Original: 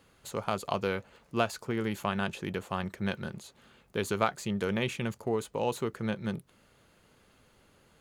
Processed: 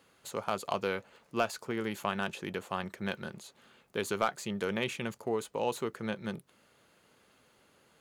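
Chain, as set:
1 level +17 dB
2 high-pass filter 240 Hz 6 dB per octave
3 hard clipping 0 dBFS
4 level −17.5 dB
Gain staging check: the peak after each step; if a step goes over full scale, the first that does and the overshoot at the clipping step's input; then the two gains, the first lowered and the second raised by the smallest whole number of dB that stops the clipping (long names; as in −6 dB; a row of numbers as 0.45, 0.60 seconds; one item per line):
+7.0, +7.0, 0.0, −17.5 dBFS
step 1, 7.0 dB
step 1 +10 dB, step 4 −10.5 dB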